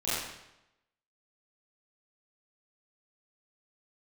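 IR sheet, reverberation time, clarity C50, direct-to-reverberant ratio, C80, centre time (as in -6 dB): 0.90 s, -3.5 dB, -13.0 dB, -0.5 dB, 93 ms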